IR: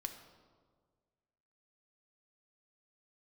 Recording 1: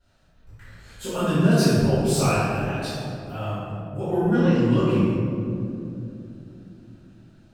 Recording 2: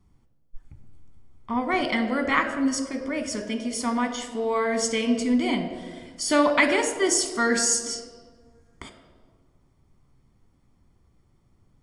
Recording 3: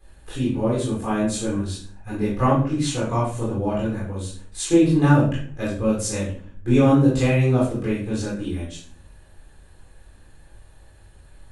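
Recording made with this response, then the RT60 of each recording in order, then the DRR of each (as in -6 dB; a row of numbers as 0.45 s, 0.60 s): 2; 2.8 s, 1.7 s, 0.50 s; -18.0 dB, 6.0 dB, -7.0 dB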